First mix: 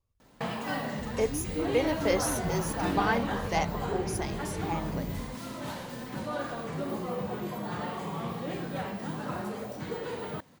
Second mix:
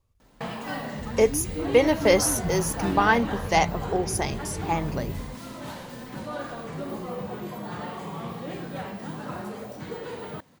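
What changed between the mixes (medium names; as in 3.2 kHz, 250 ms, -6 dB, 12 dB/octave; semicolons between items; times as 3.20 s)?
speech +8.5 dB; second sound +4.0 dB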